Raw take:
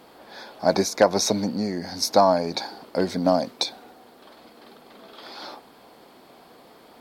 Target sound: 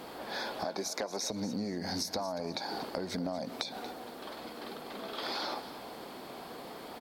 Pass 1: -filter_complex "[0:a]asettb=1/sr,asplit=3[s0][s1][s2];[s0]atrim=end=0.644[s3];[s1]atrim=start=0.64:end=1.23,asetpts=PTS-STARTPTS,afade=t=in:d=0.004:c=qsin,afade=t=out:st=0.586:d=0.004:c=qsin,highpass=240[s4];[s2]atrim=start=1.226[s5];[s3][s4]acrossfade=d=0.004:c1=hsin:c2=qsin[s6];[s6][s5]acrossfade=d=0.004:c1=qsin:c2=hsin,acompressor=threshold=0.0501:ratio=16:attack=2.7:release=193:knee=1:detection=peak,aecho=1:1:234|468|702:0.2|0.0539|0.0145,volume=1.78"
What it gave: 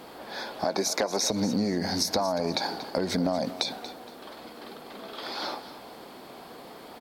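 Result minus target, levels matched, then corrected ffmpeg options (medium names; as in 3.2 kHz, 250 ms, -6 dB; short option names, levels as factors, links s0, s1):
compression: peak gain reduction -9 dB
-filter_complex "[0:a]asettb=1/sr,asplit=3[s0][s1][s2];[s0]atrim=end=0.644[s3];[s1]atrim=start=0.64:end=1.23,asetpts=PTS-STARTPTS,afade=t=in:d=0.004:c=qsin,afade=t=out:st=0.586:d=0.004:c=qsin,highpass=240[s4];[s2]atrim=start=1.226[s5];[s3][s4]acrossfade=d=0.004:c1=hsin:c2=qsin[s6];[s6][s5]acrossfade=d=0.004:c1=qsin:c2=hsin,acompressor=threshold=0.0168:ratio=16:attack=2.7:release=193:knee=1:detection=peak,aecho=1:1:234|468|702:0.2|0.0539|0.0145,volume=1.78"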